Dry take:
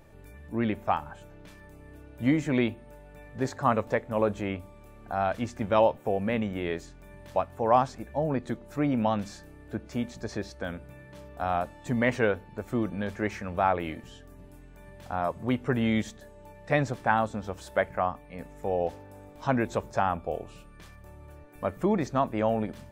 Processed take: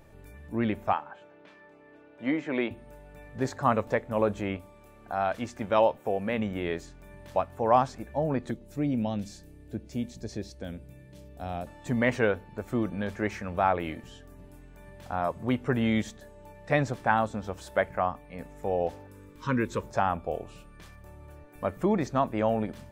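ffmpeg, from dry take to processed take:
-filter_complex "[0:a]asettb=1/sr,asplit=3[s0][s1][s2];[s0]atrim=end=0.934[s3];[s1]atrim=start=0.93:end=2.71,asetpts=PTS-STARTPTS,afade=t=in:d=0.004:c=qsin,afade=t=out:st=1.776:d=0.004:c=qsin,highpass=320,lowpass=3200[s4];[s2]atrim=start=2.706[s5];[s3][s4]acrossfade=d=0.004:c1=hsin:c2=qsin[s6];[s6][s5]acrossfade=d=0.004:c1=qsin:c2=hsin,asettb=1/sr,asplit=3[s7][s8][s9];[s7]atrim=end=4.574[s10];[s8]atrim=start=4.57:end=6.39,asetpts=PTS-STARTPTS,afade=t=in:d=0.004:c=qsin,afade=t=out:st=1.816:d=0.004:c=qsin,lowshelf=f=190:g=-7[s11];[s9]atrim=start=6.386[s12];[s10][s11]acrossfade=d=0.004:c1=hsin:c2=qsin[s13];[s13][s12]acrossfade=d=0.004:c1=qsin:c2=hsin,asettb=1/sr,asplit=3[s14][s15][s16];[s14]atrim=end=8.514[s17];[s15]atrim=start=8.51:end=11.67,asetpts=PTS-STARTPTS,afade=t=in:d=0.004:c=qsin,afade=t=out:st=3.156:d=0.004:c=qsin,equalizer=f=1200:t=o:w=1.6:g=-15[s18];[s16]atrim=start=11.666[s19];[s17][s18]acrossfade=d=0.004:c1=hsin:c2=qsin[s20];[s20][s19]acrossfade=d=0.004:c1=qsin:c2=hsin,asettb=1/sr,asplit=3[s21][s22][s23];[s21]atrim=end=19.074[s24];[s22]atrim=start=19.07:end=19.81,asetpts=PTS-STARTPTS,afade=t=in:d=0.004:c=qsin,afade=t=out:st=0.736:d=0.004:c=qsin,asuperstop=centerf=710:order=8:qfactor=1.8[s25];[s23]atrim=start=19.806[s26];[s24][s25]acrossfade=d=0.004:c1=hsin:c2=qsin[s27];[s27][s26]acrossfade=d=0.004:c1=qsin:c2=hsin"

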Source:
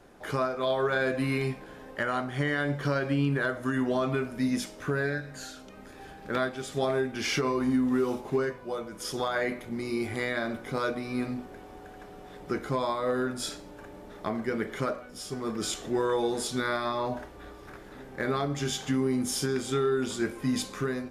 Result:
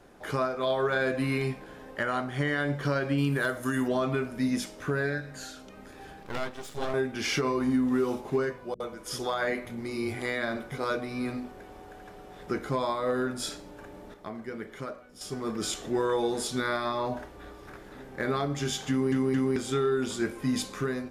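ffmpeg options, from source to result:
-filter_complex "[0:a]asettb=1/sr,asplit=3[s0][s1][s2];[s0]atrim=end=3.184[s3];[s1]atrim=start=3.18:end=3.88,asetpts=PTS-STARTPTS,afade=t=in:d=0.004:c=qsin,afade=t=out:st=0.696:d=0.004:c=qsin,aemphasis=mode=production:type=50fm[s4];[s2]atrim=start=3.876[s5];[s3][s4]acrossfade=d=0.004:c1=hsin:c2=qsin[s6];[s6][s5]acrossfade=d=0.004:c1=qsin:c2=hsin,asettb=1/sr,asplit=3[s7][s8][s9];[s7]atrim=end=6.234[s10];[s8]atrim=start=6.23:end=6.94,asetpts=PTS-STARTPTS,afade=t=in:d=0.004:c=qsin,afade=t=out:st=0.706:d=0.004:c=qsin,aeval=exprs='max(val(0),0)':c=same[s11];[s9]atrim=start=6.936[s12];[s10][s11]acrossfade=d=0.004:c1=hsin:c2=qsin[s13];[s13][s12]acrossfade=d=0.004:c1=qsin:c2=hsin,asettb=1/sr,asplit=3[s14][s15][s16];[s14]atrim=end=8.744[s17];[s15]atrim=start=8.74:end=12.48,asetpts=PTS-STARTPTS,afade=t=in:d=0.004:c=qsin,afade=t=out:st=3.736:d=0.004:c=qsin,acrossover=split=220[s18][s19];[s19]adelay=60[s20];[s18][s20]amix=inputs=2:normalize=0,atrim=end_sample=164934[s21];[s16]atrim=start=12.476[s22];[s17][s21]acrossfade=d=0.004:c1=hsin:c2=qsin[s23];[s23][s22]acrossfade=d=0.004:c1=qsin:c2=hsin,asplit=6[s24][s25][s26][s27][s28][s29];[s24]atrim=end=14.142[s30];[s25]atrim=start=14.138:end=15.212,asetpts=PTS-STARTPTS,volume=0.422[s31];[s26]atrim=start=15.208:end=19.122[s32];[s27]atrim=start=18.898:end=19.122[s33];[s28]atrim=start=18.898:end=19.122[s34];[s29]atrim=start=19.558[s35];[s30][s31]acrossfade=d=0.004:c1=hsin:c2=hsin[s36];[s36][s32]acrossfade=d=0.004:c1=hsin:c2=hsin[s37];[s37][s33]acrossfade=d=0.004:c1=hsin:c2=hsin[s38];[s38][s34]acrossfade=d=0.004:c1=hsin:c2=hsin[s39];[s39][s35]acrossfade=d=0.004:c1=hsin:c2=hsin"

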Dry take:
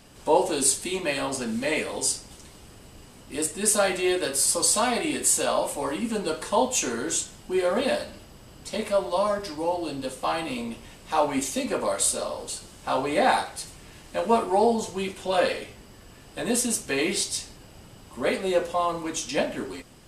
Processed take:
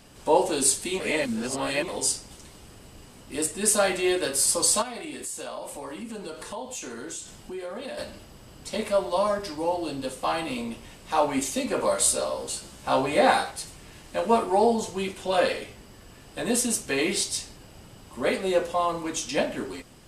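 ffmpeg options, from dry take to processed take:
-filter_complex "[0:a]asplit=3[s0][s1][s2];[s0]afade=t=out:st=4.81:d=0.02[s3];[s1]acompressor=threshold=0.0158:ratio=3:attack=3.2:release=140:knee=1:detection=peak,afade=t=in:st=4.81:d=0.02,afade=t=out:st=7.97:d=0.02[s4];[s2]afade=t=in:st=7.97:d=0.02[s5];[s3][s4][s5]amix=inputs=3:normalize=0,asettb=1/sr,asplit=3[s6][s7][s8];[s6]atrim=end=11.764[s9];[s7]atrim=start=11.76:end=13.51,asetpts=PTS-STARTPTS,afade=t=in:d=0.004:c=qsin,afade=t=out:st=1.746:d=0.004:c=qsin,asplit=2[s10][s11];[s11]adelay=15,volume=0.631[s12];[s10][s12]amix=inputs=2:normalize=0,atrim=end_sample=77175[s13];[s8]atrim=start=13.506[s14];[s9][s13]acrossfade=d=0.004:c1=hsin:c2=qsin[s15];[s15][s14]acrossfade=d=0.004:c1=qsin:c2=hsin,asplit=3[s16][s17][s18];[s16]atrim=end=1.002[s19];[s17]atrim=start=0.998:end=1.882,asetpts=PTS-STARTPTS,areverse[s20];[s18]atrim=start=1.878[s21];[s19][s20]acrossfade=d=0.004:c1=hsin:c2=hsin[s22];[s22][s21]acrossfade=d=0.004:c1=hsin:c2=hsin"

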